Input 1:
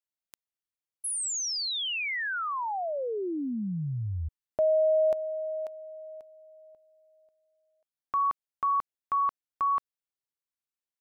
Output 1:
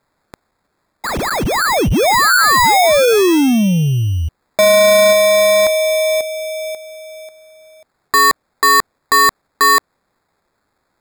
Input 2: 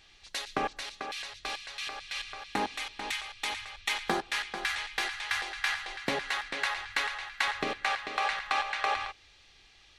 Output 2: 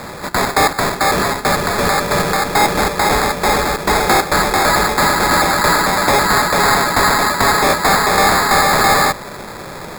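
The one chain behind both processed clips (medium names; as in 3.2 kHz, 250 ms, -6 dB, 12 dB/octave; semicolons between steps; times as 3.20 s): overdrive pedal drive 31 dB, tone 2.8 kHz, clips at -12.5 dBFS; sample-and-hold 15×; trim +8.5 dB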